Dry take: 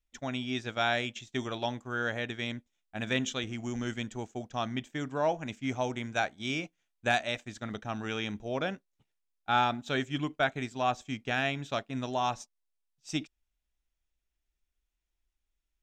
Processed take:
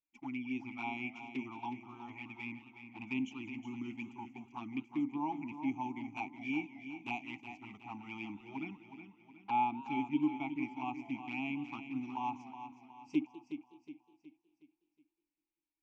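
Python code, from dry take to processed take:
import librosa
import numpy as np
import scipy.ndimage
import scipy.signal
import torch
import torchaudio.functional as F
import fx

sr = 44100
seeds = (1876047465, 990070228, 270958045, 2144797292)

y = fx.vowel_filter(x, sr, vowel='u')
y = fx.fixed_phaser(y, sr, hz=2500.0, stages=8)
y = fx.env_flanger(y, sr, rest_ms=6.2, full_db=-43.0)
y = fx.echo_feedback(y, sr, ms=367, feedback_pct=44, wet_db=-10.0)
y = fx.echo_warbled(y, sr, ms=195, feedback_pct=58, rate_hz=2.8, cents=169, wet_db=-19.5)
y = F.gain(torch.from_numpy(y), 9.5).numpy()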